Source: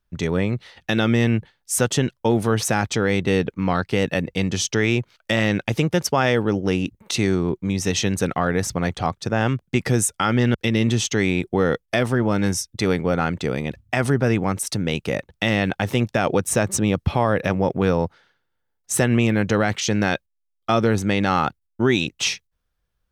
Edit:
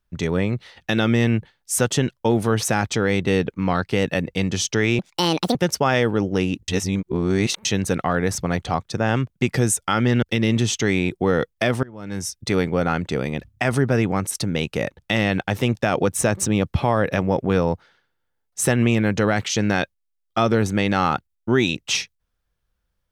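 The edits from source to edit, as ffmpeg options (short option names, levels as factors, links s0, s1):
-filter_complex "[0:a]asplit=6[s0][s1][s2][s3][s4][s5];[s0]atrim=end=4.994[s6];[s1]atrim=start=4.99:end=5.87,asetpts=PTS-STARTPTS,asetrate=69237,aresample=44100,atrim=end_sample=24718,asetpts=PTS-STARTPTS[s7];[s2]atrim=start=5.866:end=7.002[s8];[s3]atrim=start=6.998:end=7.972,asetpts=PTS-STARTPTS,areverse[s9];[s4]atrim=start=7.968:end=12.15,asetpts=PTS-STARTPTS,afade=t=out:st=4.178:d=0.004:c=hsin:silence=0.0749894[s10];[s5]atrim=start=12.15,asetpts=PTS-STARTPTS,afade=t=in:d=0.53:c=qua:silence=0.0749894[s11];[s6][s7]acrossfade=d=0.004:c1=hsin:c2=hsin[s12];[s12][s8]acrossfade=d=0.004:c1=hsin:c2=hsin[s13];[s13][s9]acrossfade=d=0.004:c1=hsin:c2=hsin[s14];[s10][s11]concat=n=2:v=0:a=1[s15];[s14][s15]acrossfade=d=0.004:c1=hsin:c2=hsin"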